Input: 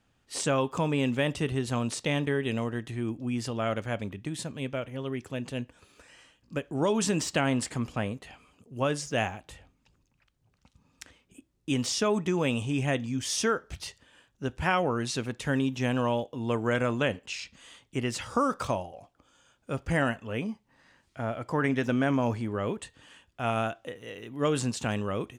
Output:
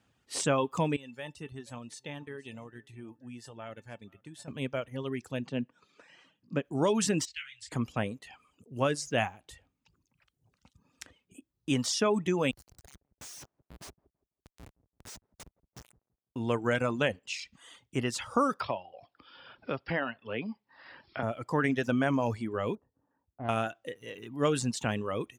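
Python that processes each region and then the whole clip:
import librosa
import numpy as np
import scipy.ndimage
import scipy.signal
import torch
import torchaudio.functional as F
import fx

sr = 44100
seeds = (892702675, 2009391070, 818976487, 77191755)

y = fx.chain(x, sr, fx.comb_fb(f0_hz=890.0, decay_s=0.16, harmonics='all', damping=0.0, mix_pct=80),
    fx.echo_single(ms=476, db=-20.0), at=(0.96, 4.48))
y = fx.chain(y, sr, fx.highpass_res(hz=170.0, q=1.8),
    fx.air_absorb(metres=120.0), at=(5.46, 6.65))
y = fx.chain(y, sr, fx.cheby2_bandstop(low_hz=190.0, high_hz=770.0, order=4, stop_db=60),
    fx.air_absorb(metres=88.0),
    fx.detune_double(cents=54), at=(7.25, 7.72))
y = fx.chain(y, sr, fx.cheby2_bandstop(low_hz=300.0, high_hz=1300.0, order=4, stop_db=80),
    fx.schmitt(flips_db=-44.5),
    fx.echo_wet_lowpass(ms=167, feedback_pct=30, hz=810.0, wet_db=-12), at=(12.51, 16.36))
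y = fx.chain(y, sr, fx.brickwall_lowpass(high_hz=5500.0),
    fx.low_shelf(hz=180.0, db=-12.0),
    fx.band_squash(depth_pct=70), at=(18.6, 21.23))
y = fx.chain(y, sr, fx.lowpass(hz=1000.0, slope=24),
    fx.peak_eq(hz=270.0, db=7.0, octaves=0.2),
    fx.tube_stage(drive_db=25.0, bias=0.8), at=(22.75, 23.49))
y = scipy.signal.sosfilt(scipy.signal.butter(2, 63.0, 'highpass', fs=sr, output='sos'), y)
y = fx.dereverb_blind(y, sr, rt60_s=0.8)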